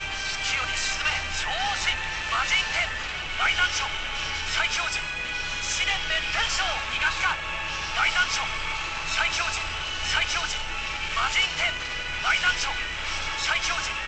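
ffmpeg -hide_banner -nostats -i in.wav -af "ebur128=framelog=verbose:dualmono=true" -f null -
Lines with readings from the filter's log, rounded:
Integrated loudness:
  I:         -22.0 LUFS
  Threshold: -32.0 LUFS
Loudness range:
  LRA:         0.9 LU
  Threshold: -42.0 LUFS
  LRA low:   -22.4 LUFS
  LRA high:  -21.5 LUFS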